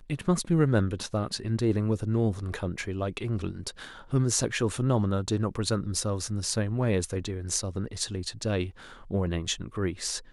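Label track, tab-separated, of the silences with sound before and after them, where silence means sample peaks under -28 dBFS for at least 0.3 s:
3.690000	4.130000	silence
8.640000	9.110000	silence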